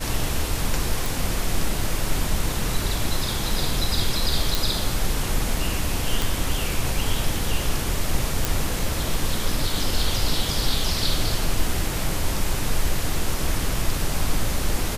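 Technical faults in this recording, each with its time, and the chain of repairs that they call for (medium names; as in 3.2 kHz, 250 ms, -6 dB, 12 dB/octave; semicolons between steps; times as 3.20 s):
1.06 s: pop
4.55 s: pop
6.22 s: pop
8.45 s: pop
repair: de-click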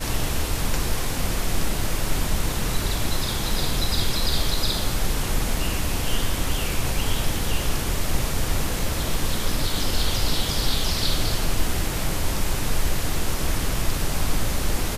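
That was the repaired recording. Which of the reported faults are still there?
nothing left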